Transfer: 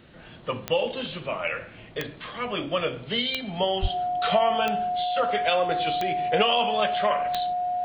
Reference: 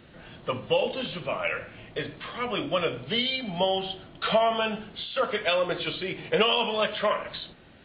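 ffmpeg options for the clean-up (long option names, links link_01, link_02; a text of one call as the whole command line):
ffmpeg -i in.wav -filter_complex "[0:a]adeclick=threshold=4,bandreject=frequency=720:width=30,asplit=3[link_01][link_02][link_03];[link_01]afade=type=out:start_time=3.81:duration=0.02[link_04];[link_02]highpass=frequency=140:width=0.5412,highpass=frequency=140:width=1.3066,afade=type=in:start_time=3.81:duration=0.02,afade=type=out:start_time=3.93:duration=0.02[link_05];[link_03]afade=type=in:start_time=3.93:duration=0.02[link_06];[link_04][link_05][link_06]amix=inputs=3:normalize=0" out.wav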